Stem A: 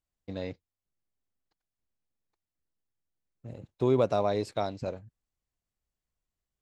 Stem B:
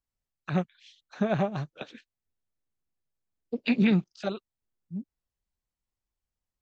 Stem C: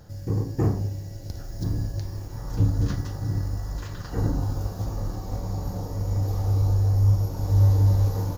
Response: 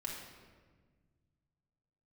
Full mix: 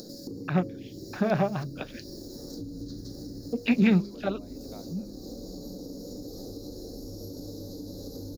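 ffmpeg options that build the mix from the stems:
-filter_complex "[0:a]adelay=150,volume=-19dB[a];[1:a]lowpass=3.3k,bandreject=f=68:t=h:w=4,bandreject=f=136:t=h:w=4,bandreject=f=204:t=h:w=4,bandreject=f=272:t=h:w=4,bandreject=f=340:t=h:w=4,bandreject=f=408:t=h:w=4,bandreject=f=476:t=h:w=4,bandreject=f=544:t=h:w=4,bandreject=f=612:t=h:w=4,agate=range=-33dB:threshold=-51dB:ratio=3:detection=peak,volume=2dB[b];[2:a]firequalizer=gain_entry='entry(110,0);entry(260,13);entry(490,7);entry(930,-17);entry(1600,-12);entry(2700,-25);entry(4000,14);entry(6200,5)':delay=0.05:min_phase=1,volume=-10.5dB,asplit=2[c][d];[d]volume=-14.5dB[e];[a][c]amix=inputs=2:normalize=0,highpass=240,acompressor=threshold=-44dB:ratio=6,volume=0dB[f];[3:a]atrim=start_sample=2205[g];[e][g]afir=irnorm=-1:irlink=0[h];[b][f][h]amix=inputs=3:normalize=0,acompressor=mode=upward:threshold=-32dB:ratio=2.5"

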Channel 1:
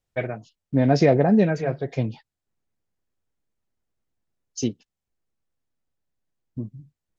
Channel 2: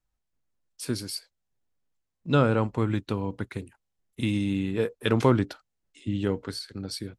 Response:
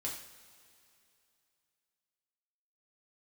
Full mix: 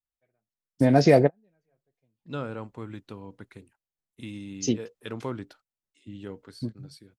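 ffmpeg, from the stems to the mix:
-filter_complex "[0:a]adelay=50,volume=0.5dB[a];[1:a]dynaudnorm=f=140:g=11:m=4dB,volume=-15dB,asplit=2[b][c];[c]apad=whole_len=323476[d];[a][d]sidechaingate=range=-48dB:threshold=-55dB:ratio=16:detection=peak[e];[e][b]amix=inputs=2:normalize=0,lowshelf=f=88:g=-7"

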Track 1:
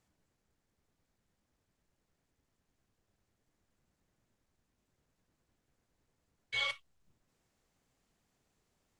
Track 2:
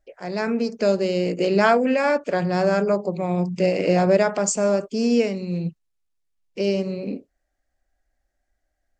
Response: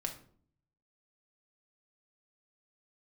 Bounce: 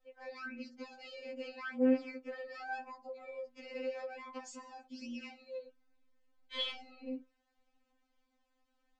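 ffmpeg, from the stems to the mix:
-filter_complex "[0:a]adynamicequalizer=threshold=0.00447:dfrequency=2100:dqfactor=1.4:tfrequency=2100:tqfactor=1.4:attack=5:release=100:ratio=0.375:range=1.5:mode=boostabove:tftype=bell,volume=2dB[a];[1:a]alimiter=limit=-15.5dB:level=0:latency=1:release=58,volume=-10dB[b];[a][b]amix=inputs=2:normalize=0,lowpass=3.9k,equalizer=f=180:t=o:w=0.42:g=-11.5,afftfilt=real='re*3.46*eq(mod(b,12),0)':imag='im*3.46*eq(mod(b,12),0)':win_size=2048:overlap=0.75"

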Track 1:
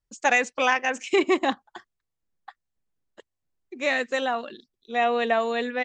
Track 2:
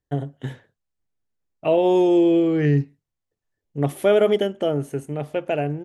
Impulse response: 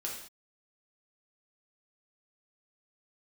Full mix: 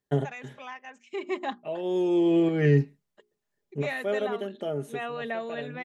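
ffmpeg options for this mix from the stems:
-filter_complex "[0:a]highshelf=f=5.4k:g=-9,bandreject=f=60:t=h:w=6,bandreject=f=120:t=h:w=6,bandreject=f=180:t=h:w=6,bandreject=f=240:t=h:w=6,bandreject=f=300:t=h:w=6,bandreject=f=360:t=h:w=6,bandreject=f=420:t=h:w=6,volume=-9dB,afade=t=in:st=1.09:d=0.28:silence=0.298538,asplit=2[a][b];[1:a]highpass=120,volume=1dB[c];[b]apad=whole_len=257597[d];[c][d]sidechaincompress=threshold=-47dB:ratio=8:attack=6.8:release=736[e];[a][e]amix=inputs=2:normalize=0,aecho=1:1:4.9:0.49"

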